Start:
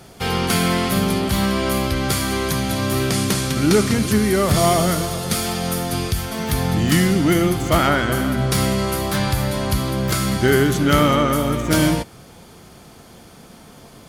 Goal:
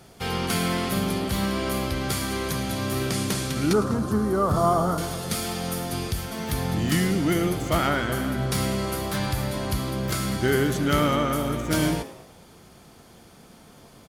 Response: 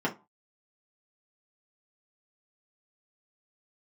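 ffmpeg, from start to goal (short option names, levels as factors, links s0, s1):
-filter_complex "[0:a]asettb=1/sr,asplit=3[s0][s1][s2];[s0]atrim=end=3.734[s3];[s1]atrim=start=3.73:end=4.98,asetpts=PTS-STARTPTS,afade=t=in:d=0.004:c=qsin,afade=t=out:st=1.246:d=0.004:c=qsin,highshelf=f=1600:t=q:w=3:g=-9.5[s4];[s2]atrim=start=4.976[s5];[s3][s4]acrossfade=d=0.004:c1=hsin:c2=qsin[s6];[s6][s5]acrossfade=d=0.004:c1=qsin:c2=hsin,asplit=5[s7][s8][s9][s10][s11];[s8]adelay=108,afreqshift=110,volume=0.158[s12];[s9]adelay=216,afreqshift=220,volume=0.0684[s13];[s10]adelay=324,afreqshift=330,volume=0.0292[s14];[s11]adelay=432,afreqshift=440,volume=0.0126[s15];[s7][s12][s13][s14][s15]amix=inputs=5:normalize=0,volume=0.473"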